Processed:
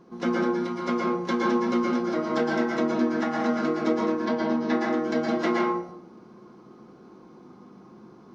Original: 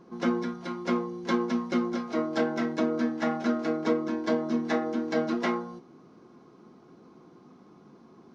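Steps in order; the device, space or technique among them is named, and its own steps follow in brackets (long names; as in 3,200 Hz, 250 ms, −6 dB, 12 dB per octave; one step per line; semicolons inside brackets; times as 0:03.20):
bathroom (convolution reverb RT60 0.60 s, pre-delay 109 ms, DRR −2 dB)
0:04.25–0:04.81: low-pass filter 5,600 Hz 24 dB per octave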